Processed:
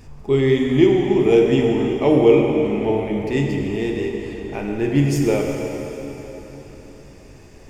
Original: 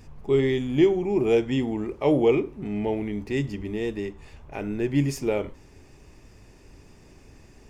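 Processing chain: plate-style reverb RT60 3.9 s, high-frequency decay 0.9×, DRR 0.5 dB; trim +4 dB

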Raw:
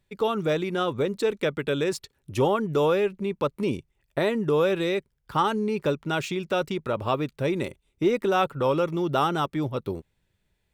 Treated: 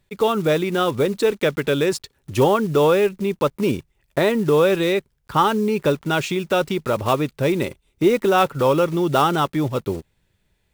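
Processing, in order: block-companded coder 5-bit; trim +6 dB

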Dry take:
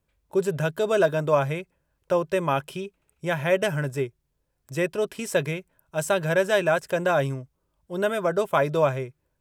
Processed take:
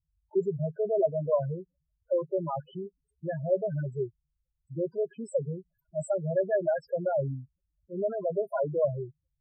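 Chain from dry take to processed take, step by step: loudest bins only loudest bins 4; trim -3.5 dB

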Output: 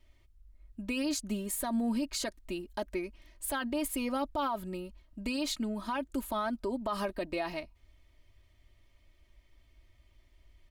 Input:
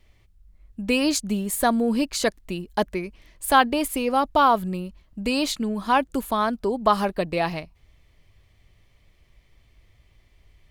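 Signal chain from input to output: comb 3.2 ms, depth 70%; peak limiter -16.5 dBFS, peak gain reduction 13 dB; trim -8 dB

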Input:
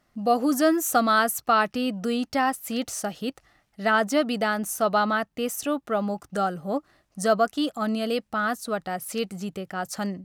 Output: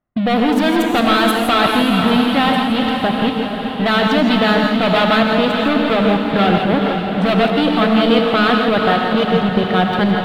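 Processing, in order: level-controlled noise filter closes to 1.3 kHz, open at -16.5 dBFS; tone controls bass +3 dB, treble +1 dB; waveshaping leveller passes 5; level held to a coarse grid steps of 16 dB; resonant high shelf 4.7 kHz -9.5 dB, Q 3; echo that smears into a reverb 456 ms, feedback 52%, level -5.5 dB; gated-style reverb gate 190 ms rising, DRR 2.5 dB

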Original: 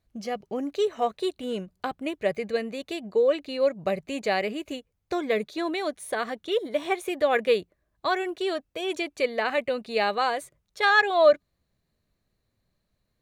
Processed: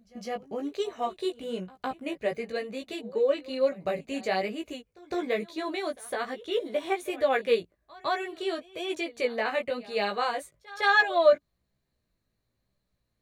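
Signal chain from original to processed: chorus 1.1 Hz, delay 15 ms, depth 3.6 ms; pre-echo 158 ms -21 dB

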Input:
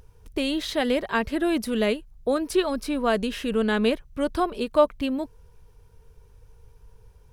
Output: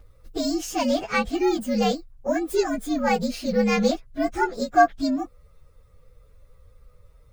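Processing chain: frequency axis rescaled in octaves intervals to 119%; trim +3.5 dB

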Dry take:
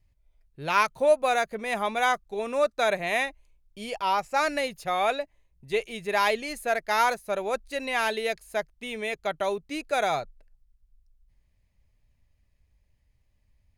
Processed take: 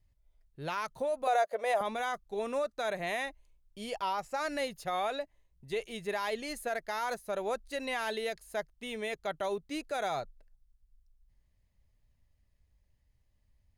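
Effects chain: peaking EQ 2.4 kHz -6 dB 0.24 oct; peak limiter -21.5 dBFS, peak gain reduction 11 dB; 1.27–1.81 s: resonant high-pass 590 Hz, resonance Q 4.9; trim -3.5 dB

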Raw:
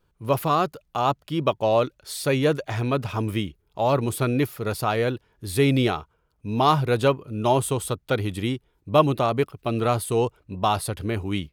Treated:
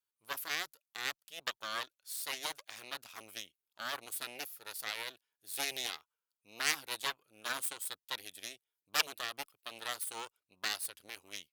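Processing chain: Chebyshev shaper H 3 -7 dB, 4 -8 dB, 5 -43 dB, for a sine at -4 dBFS; differentiator; trim +1 dB

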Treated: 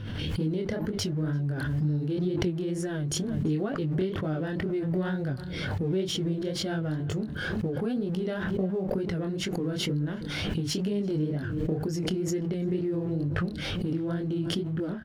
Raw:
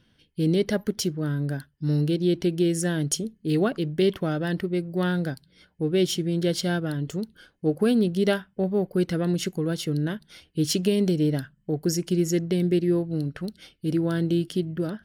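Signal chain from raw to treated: companding laws mixed up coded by mu; low-pass 1.9 kHz 6 dB/octave; peaking EQ 100 Hz +13.5 dB 0.37 oct; compression 10:1, threshold -33 dBFS, peak gain reduction 16.5 dB; chorus 2.1 Hz, delay 19.5 ms, depth 7.3 ms; echo from a far wall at 58 m, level -19 dB; swell ahead of each attack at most 25 dB/s; trim +8.5 dB

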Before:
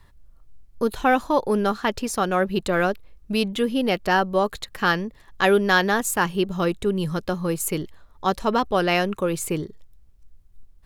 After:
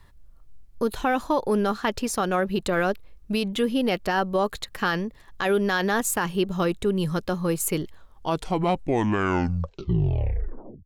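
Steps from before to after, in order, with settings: tape stop on the ending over 2.95 s; peak limiter -14 dBFS, peak gain reduction 9.5 dB

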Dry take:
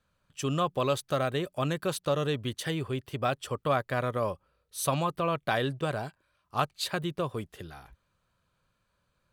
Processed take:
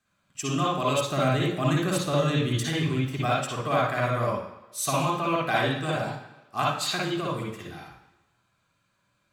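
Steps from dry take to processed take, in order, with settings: 1.06–3.22 s: bass shelf 180 Hz +8.5 dB; reverberation RT60 1.1 s, pre-delay 51 ms, DRR -4 dB

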